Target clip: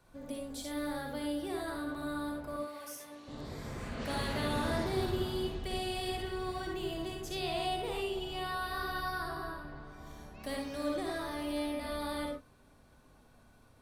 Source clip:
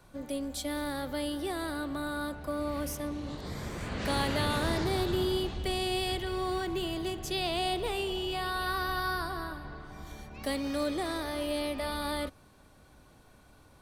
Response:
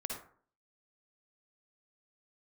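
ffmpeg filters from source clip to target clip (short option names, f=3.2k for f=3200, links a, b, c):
-filter_complex "[0:a]asettb=1/sr,asplit=3[a][b][c];[a]atrim=end=2.564[d];[b]atrim=start=2.56:end=3.28,asetpts=PTS-STARTPTS,afade=t=in:d=0.004:c=qsin,afade=t=out:st=0.716:d=0.004:c=qsin,highpass=f=1.5k:p=1[e];[c]atrim=start=3.276[f];[d][e]acrossfade=d=0.004:c1=hsin:c2=qsin[g];[g][f]acrossfade=d=0.004:c1=qsin:c2=hsin[h];[1:a]atrim=start_sample=2205,afade=t=out:st=0.17:d=0.01,atrim=end_sample=7938[i];[h][i]afir=irnorm=-1:irlink=0,volume=-4.5dB"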